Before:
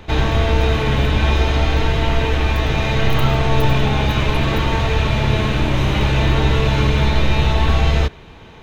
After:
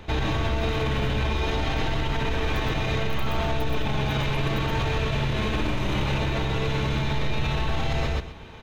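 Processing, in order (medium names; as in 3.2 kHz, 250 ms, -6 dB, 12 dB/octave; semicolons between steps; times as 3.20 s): on a send: feedback delay 124 ms, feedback 16%, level -3.5 dB; on the sum: peak limiter -12.5 dBFS, peak gain reduction 11 dB; trim -4 dB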